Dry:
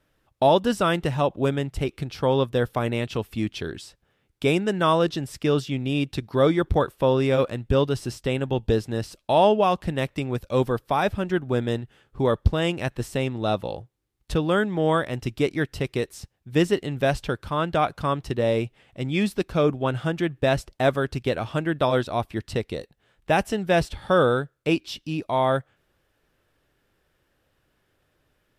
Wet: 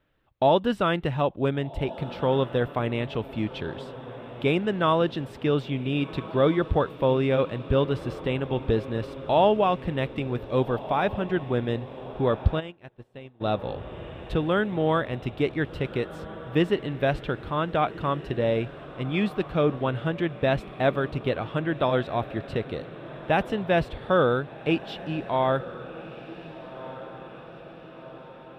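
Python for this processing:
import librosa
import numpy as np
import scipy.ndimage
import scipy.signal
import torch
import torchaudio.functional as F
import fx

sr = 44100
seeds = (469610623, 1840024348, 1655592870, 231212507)

p1 = fx.band_shelf(x, sr, hz=7900.0, db=-15.0, octaves=1.7)
p2 = p1 + fx.echo_diffused(p1, sr, ms=1527, feedback_pct=57, wet_db=-15, dry=0)
p3 = fx.upward_expand(p2, sr, threshold_db=-33.0, expansion=2.5, at=(12.59, 13.4), fade=0.02)
y = p3 * 10.0 ** (-2.0 / 20.0)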